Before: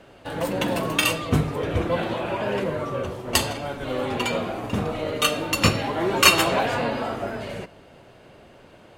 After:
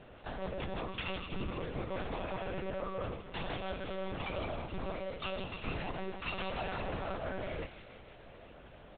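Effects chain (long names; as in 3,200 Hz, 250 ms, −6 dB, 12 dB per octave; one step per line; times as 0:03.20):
double-tracking delay 18 ms −10 dB
reversed playback
downward compressor 10 to 1, threshold −30 dBFS, peak gain reduction 21 dB
reversed playback
notch filter 2,900 Hz, Q 19
delay with a high-pass on its return 163 ms, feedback 58%, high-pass 2,500 Hz, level −4 dB
one-pitch LPC vocoder at 8 kHz 190 Hz
level −4.5 dB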